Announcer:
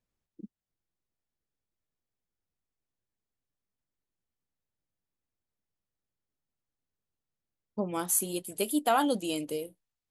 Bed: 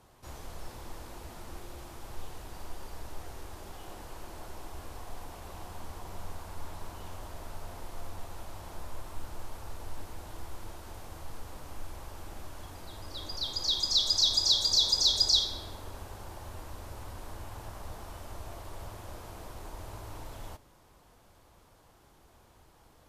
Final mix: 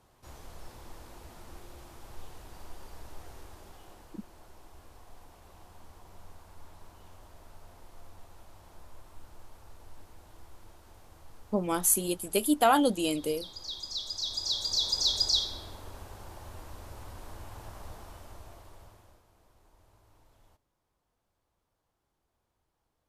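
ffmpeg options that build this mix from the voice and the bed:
ffmpeg -i stem1.wav -i stem2.wav -filter_complex "[0:a]adelay=3750,volume=3dB[link_01];[1:a]volume=4dB,afade=type=out:start_time=3.37:duration=0.83:silence=0.501187,afade=type=in:start_time=14.17:duration=0.91:silence=0.398107,afade=type=out:start_time=17.83:duration=1.41:silence=0.125893[link_02];[link_01][link_02]amix=inputs=2:normalize=0" out.wav

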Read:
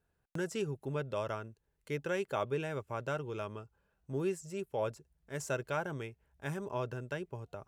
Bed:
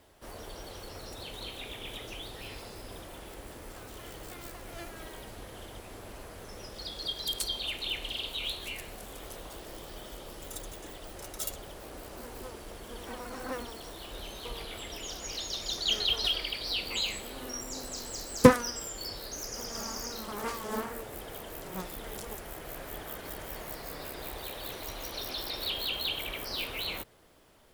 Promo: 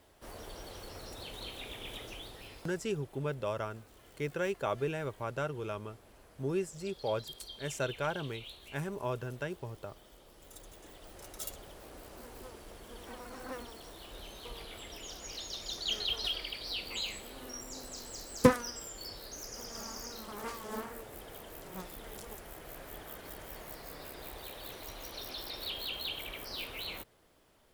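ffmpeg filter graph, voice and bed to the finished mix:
ffmpeg -i stem1.wav -i stem2.wav -filter_complex "[0:a]adelay=2300,volume=1dB[link_01];[1:a]volume=5.5dB,afade=type=out:start_time=1.99:duration=0.88:silence=0.281838,afade=type=in:start_time=10.32:duration=1.04:silence=0.398107[link_02];[link_01][link_02]amix=inputs=2:normalize=0" out.wav

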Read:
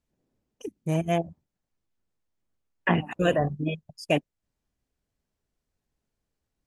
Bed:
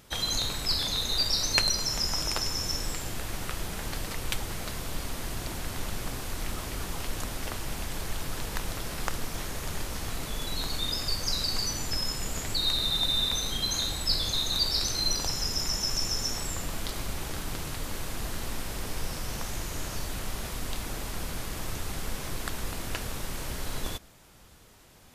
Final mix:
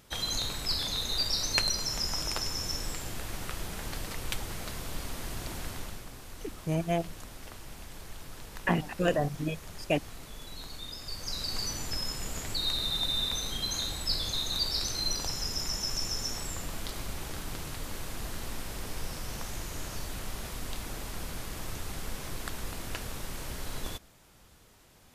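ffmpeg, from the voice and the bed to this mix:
ffmpeg -i stem1.wav -i stem2.wav -filter_complex "[0:a]adelay=5800,volume=-4dB[link_01];[1:a]volume=4.5dB,afade=type=out:start_time=5.65:duration=0.41:silence=0.398107,afade=type=in:start_time=11.01:duration=0.63:silence=0.421697[link_02];[link_01][link_02]amix=inputs=2:normalize=0" out.wav

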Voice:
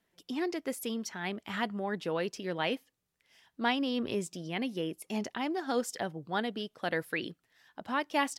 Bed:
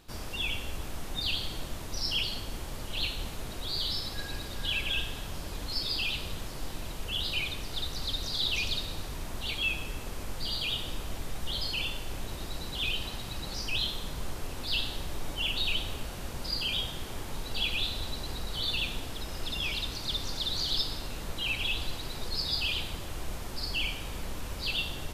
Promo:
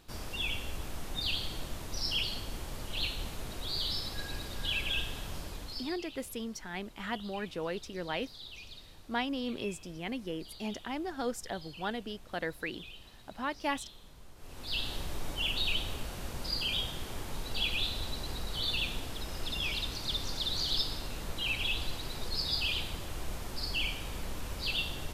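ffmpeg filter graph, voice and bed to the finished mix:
ffmpeg -i stem1.wav -i stem2.wav -filter_complex "[0:a]adelay=5500,volume=-3.5dB[link_01];[1:a]volume=14dB,afade=type=out:start_time=5.36:duration=0.63:silence=0.16788,afade=type=in:start_time=14.36:duration=0.58:silence=0.158489[link_02];[link_01][link_02]amix=inputs=2:normalize=0" out.wav

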